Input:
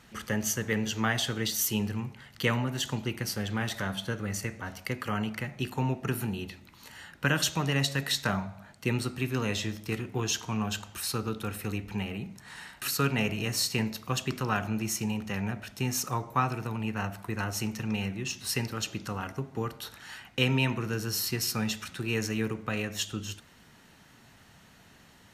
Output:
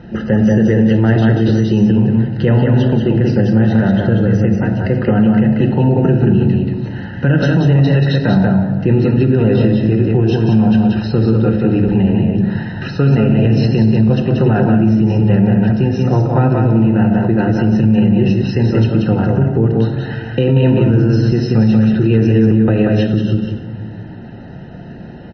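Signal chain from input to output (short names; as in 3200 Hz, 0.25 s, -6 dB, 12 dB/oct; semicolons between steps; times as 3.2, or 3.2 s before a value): HPF 42 Hz 6 dB/oct; notches 50/100/150/200/250 Hz; in parallel at -1 dB: compressor 16:1, threshold -37 dBFS, peak gain reduction 17 dB; on the sum: running mean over 39 samples; echo 0.184 s -4 dB; reverb RT60 1.5 s, pre-delay 6 ms, DRR 6.5 dB; maximiser +23.5 dB; gain -2.5 dB; MP3 24 kbps 24000 Hz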